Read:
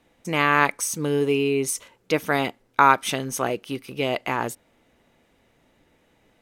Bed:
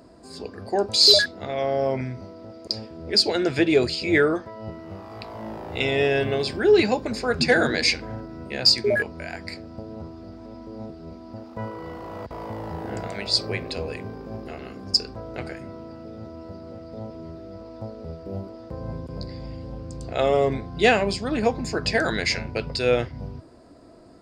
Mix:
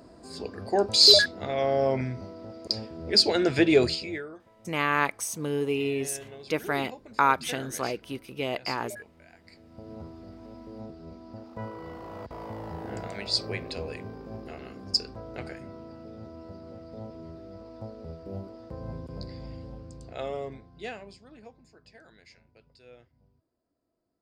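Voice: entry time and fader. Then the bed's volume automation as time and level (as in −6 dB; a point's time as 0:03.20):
4.40 s, −6.0 dB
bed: 0:03.93 −1 dB
0:04.23 −20.5 dB
0:09.45 −20.5 dB
0:09.91 −5 dB
0:19.58 −5 dB
0:21.82 −31.5 dB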